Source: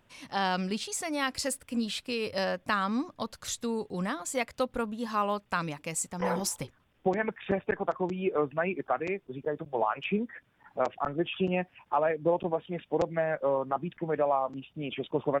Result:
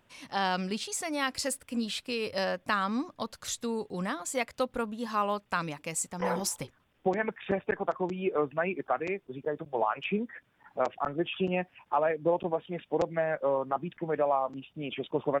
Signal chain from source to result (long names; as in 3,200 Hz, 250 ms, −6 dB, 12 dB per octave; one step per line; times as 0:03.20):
low-shelf EQ 160 Hz −4 dB